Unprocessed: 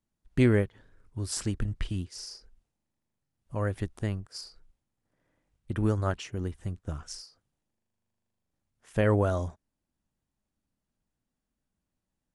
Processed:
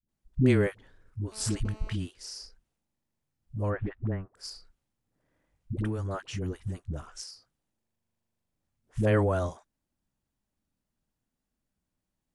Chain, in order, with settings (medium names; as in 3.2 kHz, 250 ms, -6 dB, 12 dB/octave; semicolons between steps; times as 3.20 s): 3.60–4.25 s: low-pass 2.9 kHz -> 1.5 kHz 24 dB/octave; 5.79–6.33 s: compression, threshold -27 dBFS, peak gain reduction 6.5 dB; phase dispersion highs, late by 89 ms, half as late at 370 Hz; 1.32–1.93 s: mobile phone buzz -52 dBFS